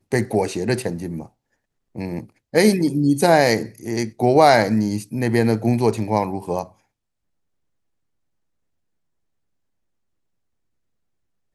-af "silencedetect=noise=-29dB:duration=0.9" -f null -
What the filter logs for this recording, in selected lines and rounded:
silence_start: 6.64
silence_end: 11.54 | silence_duration: 4.91